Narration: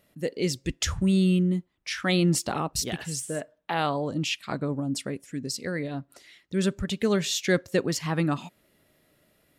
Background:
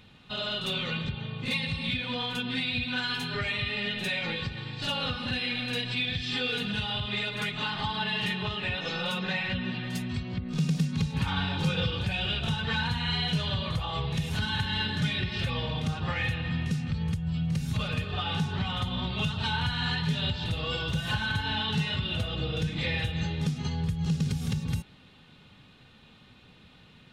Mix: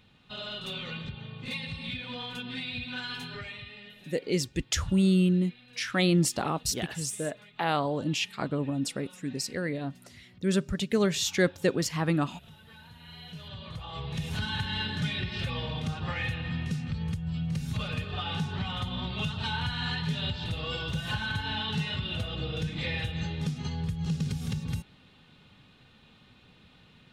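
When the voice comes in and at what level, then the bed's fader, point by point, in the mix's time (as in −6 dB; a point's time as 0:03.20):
3.90 s, −1.0 dB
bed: 0:03.24 −6 dB
0:04.16 −23 dB
0:12.82 −23 dB
0:14.27 −2.5 dB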